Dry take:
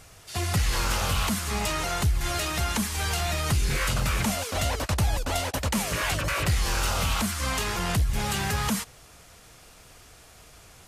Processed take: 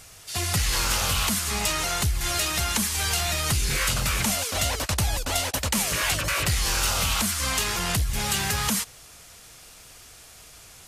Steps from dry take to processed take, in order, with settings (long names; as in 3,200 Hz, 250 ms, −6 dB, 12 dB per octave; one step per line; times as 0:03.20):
high-shelf EQ 2,200 Hz +8.5 dB
level −1.5 dB